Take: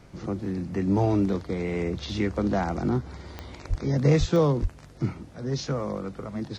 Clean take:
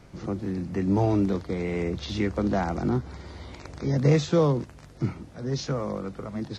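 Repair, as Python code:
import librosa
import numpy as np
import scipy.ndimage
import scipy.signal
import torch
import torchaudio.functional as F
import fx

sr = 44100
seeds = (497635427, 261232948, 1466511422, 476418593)

y = fx.fix_declick_ar(x, sr, threshold=10.0)
y = fx.highpass(y, sr, hz=140.0, slope=24, at=(3.69, 3.81), fade=0.02)
y = fx.highpass(y, sr, hz=140.0, slope=24, at=(4.19, 4.31), fade=0.02)
y = fx.highpass(y, sr, hz=140.0, slope=24, at=(4.61, 4.73), fade=0.02)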